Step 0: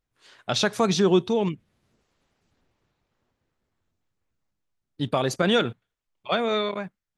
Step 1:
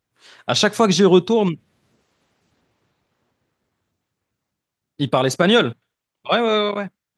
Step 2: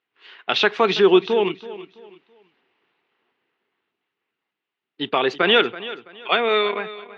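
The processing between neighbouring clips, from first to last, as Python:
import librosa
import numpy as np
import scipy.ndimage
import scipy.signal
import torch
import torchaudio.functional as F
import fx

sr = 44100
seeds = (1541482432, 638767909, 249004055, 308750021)

y1 = scipy.signal.sosfilt(scipy.signal.butter(2, 90.0, 'highpass', fs=sr, output='sos'), x)
y1 = y1 * librosa.db_to_amplitude(6.5)
y2 = fx.cabinet(y1, sr, low_hz=390.0, low_slope=12, high_hz=3700.0, hz=(400.0, 580.0, 2000.0, 2800.0), db=(5, -9, 4, 7))
y2 = fx.echo_feedback(y2, sr, ms=330, feedback_pct=31, wet_db=-16)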